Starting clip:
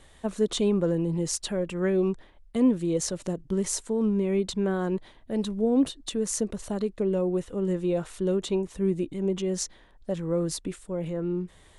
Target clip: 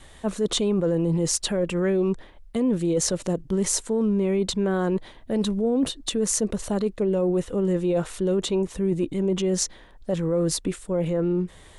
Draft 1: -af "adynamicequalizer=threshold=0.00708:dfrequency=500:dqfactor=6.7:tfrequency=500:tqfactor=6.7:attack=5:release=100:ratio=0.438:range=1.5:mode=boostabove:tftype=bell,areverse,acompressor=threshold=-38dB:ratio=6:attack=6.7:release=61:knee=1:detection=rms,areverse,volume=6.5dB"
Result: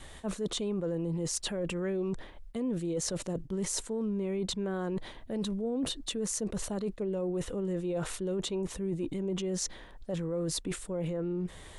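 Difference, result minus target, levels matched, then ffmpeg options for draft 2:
compressor: peak gain reduction +10 dB
-af "adynamicequalizer=threshold=0.00708:dfrequency=500:dqfactor=6.7:tfrequency=500:tqfactor=6.7:attack=5:release=100:ratio=0.438:range=1.5:mode=boostabove:tftype=bell,areverse,acompressor=threshold=-26dB:ratio=6:attack=6.7:release=61:knee=1:detection=rms,areverse,volume=6.5dB"

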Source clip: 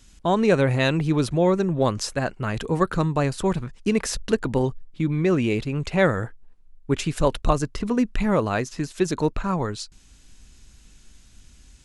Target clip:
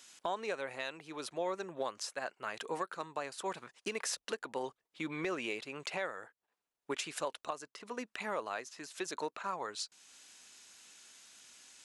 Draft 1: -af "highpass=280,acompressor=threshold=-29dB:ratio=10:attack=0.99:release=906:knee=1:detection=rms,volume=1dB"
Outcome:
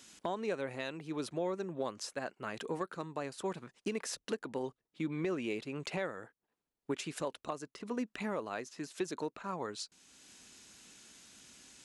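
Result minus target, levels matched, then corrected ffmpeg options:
250 Hz band +6.0 dB
-af "highpass=620,acompressor=threshold=-29dB:ratio=10:attack=0.99:release=906:knee=1:detection=rms,volume=1dB"

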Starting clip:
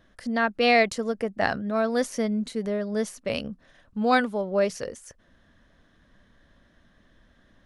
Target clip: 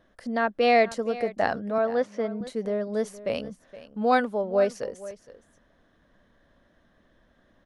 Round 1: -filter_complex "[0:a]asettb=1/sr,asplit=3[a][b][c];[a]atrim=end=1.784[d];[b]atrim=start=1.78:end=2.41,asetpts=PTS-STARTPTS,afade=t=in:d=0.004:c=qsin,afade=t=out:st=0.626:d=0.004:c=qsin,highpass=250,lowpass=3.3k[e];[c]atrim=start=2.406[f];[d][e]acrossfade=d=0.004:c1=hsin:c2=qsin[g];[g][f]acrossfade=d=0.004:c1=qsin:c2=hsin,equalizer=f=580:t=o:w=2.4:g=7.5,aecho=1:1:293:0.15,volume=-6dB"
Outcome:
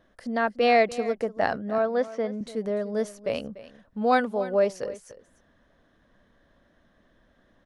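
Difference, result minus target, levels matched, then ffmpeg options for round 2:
echo 0.174 s early
-filter_complex "[0:a]asettb=1/sr,asplit=3[a][b][c];[a]atrim=end=1.784[d];[b]atrim=start=1.78:end=2.41,asetpts=PTS-STARTPTS,afade=t=in:d=0.004:c=qsin,afade=t=out:st=0.626:d=0.004:c=qsin,highpass=250,lowpass=3.3k[e];[c]atrim=start=2.406[f];[d][e]acrossfade=d=0.004:c1=hsin:c2=qsin[g];[g][f]acrossfade=d=0.004:c1=qsin:c2=hsin,equalizer=f=580:t=o:w=2.4:g=7.5,aecho=1:1:467:0.15,volume=-6dB"

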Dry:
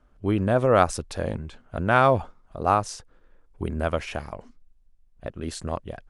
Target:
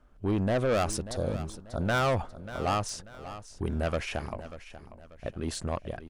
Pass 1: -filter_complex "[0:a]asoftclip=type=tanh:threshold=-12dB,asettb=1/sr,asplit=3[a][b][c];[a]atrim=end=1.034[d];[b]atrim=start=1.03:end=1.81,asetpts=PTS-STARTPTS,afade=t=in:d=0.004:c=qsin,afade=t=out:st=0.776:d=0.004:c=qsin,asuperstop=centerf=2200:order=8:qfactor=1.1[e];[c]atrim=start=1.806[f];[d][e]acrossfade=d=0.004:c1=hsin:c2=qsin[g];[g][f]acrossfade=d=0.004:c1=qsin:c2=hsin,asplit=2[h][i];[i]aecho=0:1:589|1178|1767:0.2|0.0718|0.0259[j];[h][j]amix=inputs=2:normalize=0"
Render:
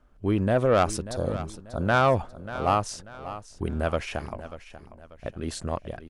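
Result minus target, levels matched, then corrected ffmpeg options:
soft clip: distortion -9 dB
-filter_complex "[0:a]asoftclip=type=tanh:threshold=-22dB,asettb=1/sr,asplit=3[a][b][c];[a]atrim=end=1.034[d];[b]atrim=start=1.03:end=1.81,asetpts=PTS-STARTPTS,afade=t=in:d=0.004:c=qsin,afade=t=out:st=0.776:d=0.004:c=qsin,asuperstop=centerf=2200:order=8:qfactor=1.1[e];[c]atrim=start=1.806[f];[d][e]acrossfade=d=0.004:c1=hsin:c2=qsin[g];[g][f]acrossfade=d=0.004:c1=qsin:c2=hsin,asplit=2[h][i];[i]aecho=0:1:589|1178|1767:0.2|0.0718|0.0259[j];[h][j]amix=inputs=2:normalize=0"

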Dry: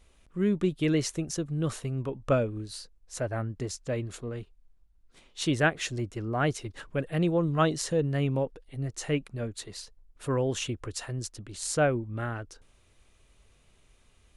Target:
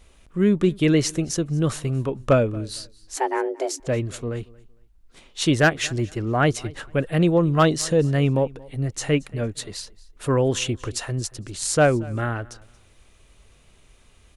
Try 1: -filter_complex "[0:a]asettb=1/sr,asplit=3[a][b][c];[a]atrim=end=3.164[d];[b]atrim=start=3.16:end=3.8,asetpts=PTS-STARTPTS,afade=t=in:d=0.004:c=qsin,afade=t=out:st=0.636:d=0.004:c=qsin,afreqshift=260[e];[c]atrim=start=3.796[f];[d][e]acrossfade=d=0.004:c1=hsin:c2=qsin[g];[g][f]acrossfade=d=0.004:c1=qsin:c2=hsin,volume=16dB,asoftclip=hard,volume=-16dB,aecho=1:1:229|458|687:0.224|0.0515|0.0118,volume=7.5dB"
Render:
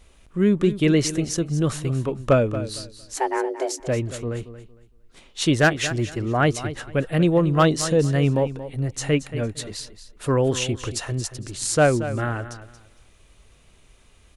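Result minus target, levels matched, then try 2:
echo-to-direct +10 dB
-filter_complex "[0:a]asettb=1/sr,asplit=3[a][b][c];[a]atrim=end=3.164[d];[b]atrim=start=3.16:end=3.8,asetpts=PTS-STARTPTS,afade=t=in:d=0.004:c=qsin,afade=t=out:st=0.636:d=0.004:c=qsin,afreqshift=260[e];[c]atrim=start=3.796[f];[d][e]acrossfade=d=0.004:c1=hsin:c2=qsin[g];[g][f]acrossfade=d=0.004:c1=qsin:c2=hsin,volume=16dB,asoftclip=hard,volume=-16dB,aecho=1:1:229|458:0.0708|0.0163,volume=7.5dB"

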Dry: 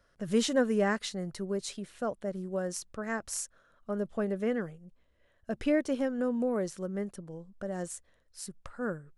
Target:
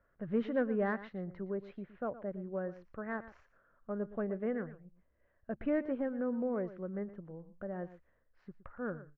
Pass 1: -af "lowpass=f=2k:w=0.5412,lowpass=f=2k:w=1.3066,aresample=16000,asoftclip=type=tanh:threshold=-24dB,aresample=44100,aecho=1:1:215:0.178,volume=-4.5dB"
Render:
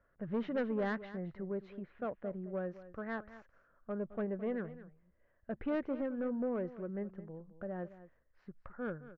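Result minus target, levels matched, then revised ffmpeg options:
echo 98 ms late; soft clip: distortion +13 dB
-af "lowpass=f=2k:w=0.5412,lowpass=f=2k:w=1.3066,aresample=16000,asoftclip=type=tanh:threshold=-15dB,aresample=44100,aecho=1:1:117:0.178,volume=-4.5dB"

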